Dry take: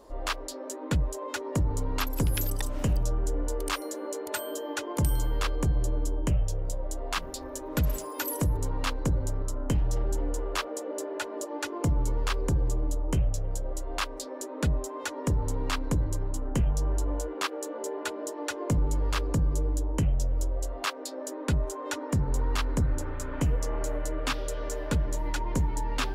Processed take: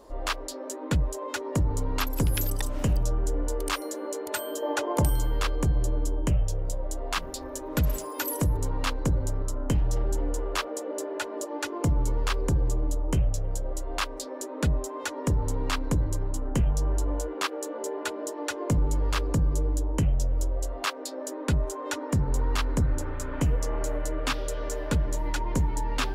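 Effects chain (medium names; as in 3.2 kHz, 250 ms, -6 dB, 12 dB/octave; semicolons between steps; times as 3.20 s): 4.62–5.10 s: peaking EQ 700 Hz +8 dB 1.5 oct; trim +1.5 dB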